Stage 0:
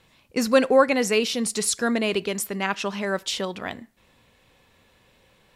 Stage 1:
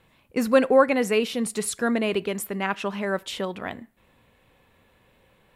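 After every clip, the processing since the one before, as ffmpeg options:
-af "equalizer=f=5.5k:w=1:g=-11"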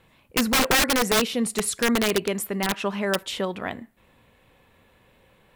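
-af "aeval=exprs='(mod(6.31*val(0)+1,2)-1)/6.31':c=same,volume=2dB"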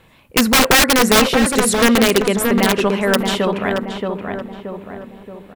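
-filter_complex "[0:a]asplit=2[a][b];[b]adelay=626,lowpass=f=1.5k:p=1,volume=-3.5dB,asplit=2[c][d];[d]adelay=626,lowpass=f=1.5k:p=1,volume=0.51,asplit=2[e][f];[f]adelay=626,lowpass=f=1.5k:p=1,volume=0.51,asplit=2[g][h];[h]adelay=626,lowpass=f=1.5k:p=1,volume=0.51,asplit=2[i][j];[j]adelay=626,lowpass=f=1.5k:p=1,volume=0.51,asplit=2[k][l];[l]adelay=626,lowpass=f=1.5k:p=1,volume=0.51,asplit=2[m][n];[n]adelay=626,lowpass=f=1.5k:p=1,volume=0.51[o];[a][c][e][g][i][k][m][o]amix=inputs=8:normalize=0,volume=8dB"

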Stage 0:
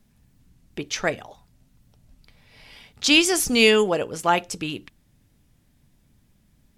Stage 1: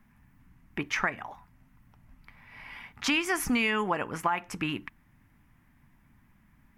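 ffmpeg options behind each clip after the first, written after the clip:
-af "equalizer=f=250:t=o:w=1:g=4,equalizer=f=500:t=o:w=1:g=-9,equalizer=f=1k:t=o:w=1:g=11,equalizer=f=2k:t=o:w=1:g=10,equalizer=f=4k:t=o:w=1:g=-10,equalizer=f=8k:t=o:w=1:g=-8,alimiter=limit=-9dB:level=0:latency=1:release=239,acompressor=threshold=-22dB:ratio=4,volume=-2dB"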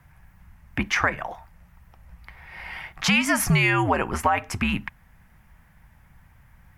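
-filter_complex "[0:a]asplit=2[a][b];[b]alimiter=limit=-22.5dB:level=0:latency=1,volume=-2.5dB[c];[a][c]amix=inputs=2:normalize=0,afreqshift=-86,volume=3.5dB"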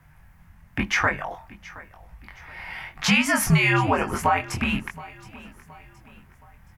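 -af "flanger=delay=19.5:depth=5.1:speed=0.98,aecho=1:1:721|1442|2163:0.1|0.043|0.0185,volume=3.5dB"

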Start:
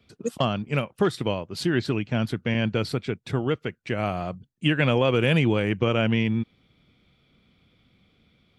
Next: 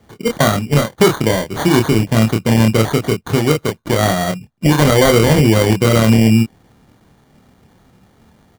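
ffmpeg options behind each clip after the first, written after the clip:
-filter_complex "[0:a]acrusher=samples=17:mix=1:aa=0.000001,asplit=2[a][b];[b]adelay=27,volume=-4dB[c];[a][c]amix=inputs=2:normalize=0,alimiter=level_in=11.5dB:limit=-1dB:release=50:level=0:latency=1,volume=-1dB"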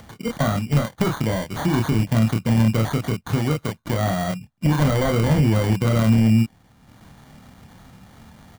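-af "deesser=0.4,equalizer=f=400:t=o:w=0.8:g=-9,acompressor=mode=upward:threshold=-33dB:ratio=2.5,volume=-3dB"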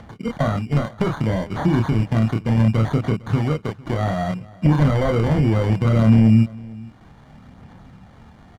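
-af "aemphasis=mode=reproduction:type=75fm,aphaser=in_gain=1:out_gain=1:delay=2.8:decay=0.24:speed=0.65:type=sinusoidal,aecho=1:1:454:0.0794"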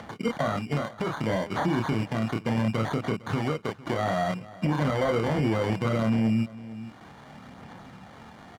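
-af "highpass=f=350:p=1,alimiter=limit=-21.5dB:level=0:latency=1:release=460,volume=4.5dB"

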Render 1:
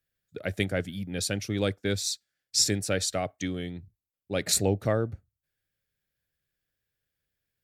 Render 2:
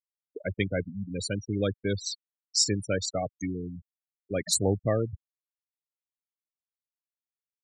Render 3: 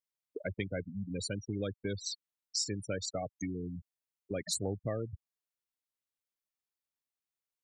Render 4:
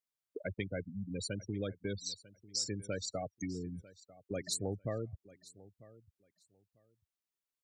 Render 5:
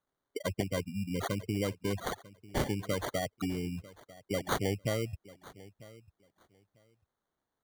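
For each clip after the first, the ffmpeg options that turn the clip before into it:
-af "afftfilt=real='re*gte(hypot(re,im),0.0631)':imag='im*gte(hypot(re,im),0.0631)':win_size=1024:overlap=0.75"
-af "acompressor=threshold=-36dB:ratio=2.5"
-af "aecho=1:1:946|1892:0.1|0.019,volume=-2dB"
-af "acrusher=samples=17:mix=1:aa=0.000001,volume=5.5dB"

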